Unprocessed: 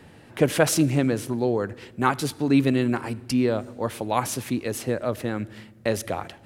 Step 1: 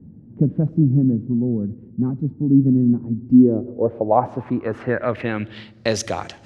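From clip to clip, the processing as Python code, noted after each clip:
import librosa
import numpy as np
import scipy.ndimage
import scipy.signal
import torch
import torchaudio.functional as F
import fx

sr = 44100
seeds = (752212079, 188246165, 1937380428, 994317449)

y = fx.filter_sweep_lowpass(x, sr, from_hz=210.0, to_hz=6200.0, start_s=3.16, end_s=6.05, q=2.6)
y = F.gain(torch.from_numpy(y), 3.5).numpy()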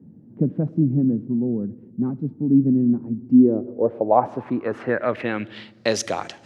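y = scipy.signal.sosfilt(scipy.signal.bessel(2, 190.0, 'highpass', norm='mag', fs=sr, output='sos'), x)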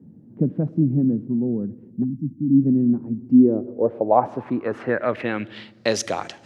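y = fx.spec_erase(x, sr, start_s=2.04, length_s=0.58, low_hz=340.0, high_hz=5200.0)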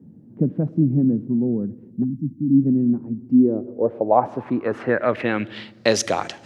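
y = fx.rider(x, sr, range_db=4, speed_s=2.0)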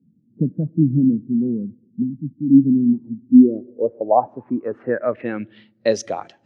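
y = fx.spectral_expand(x, sr, expansion=1.5)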